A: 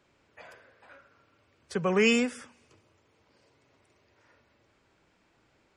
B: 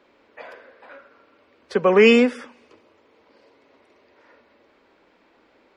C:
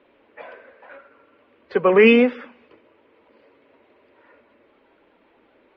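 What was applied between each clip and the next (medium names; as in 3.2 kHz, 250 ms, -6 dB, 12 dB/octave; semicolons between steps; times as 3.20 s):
graphic EQ 125/250/500/1000/2000/4000/8000 Hz -10/+10/+10/+7/+6/+7/-7 dB
coarse spectral quantiser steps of 15 dB; low-pass 3.3 kHz 24 dB/octave; trim +1 dB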